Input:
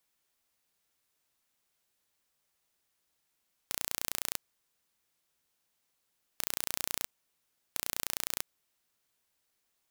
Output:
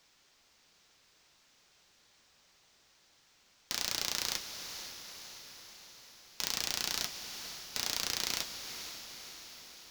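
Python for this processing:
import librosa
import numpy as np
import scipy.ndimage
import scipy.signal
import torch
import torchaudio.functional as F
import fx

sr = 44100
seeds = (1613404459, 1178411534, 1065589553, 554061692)

p1 = fx.mod_noise(x, sr, seeds[0], snr_db=14)
p2 = fx.high_shelf_res(p1, sr, hz=7800.0, db=-12.5, q=1.5)
p3 = fx.fold_sine(p2, sr, drive_db=13, ceiling_db=-13.0)
p4 = p2 + (p3 * librosa.db_to_amplitude(-3.0))
p5 = fx.echo_diffused(p4, sr, ms=518, feedback_pct=59, wet_db=-9)
y = p5 * librosa.db_to_amplitude(-1.0)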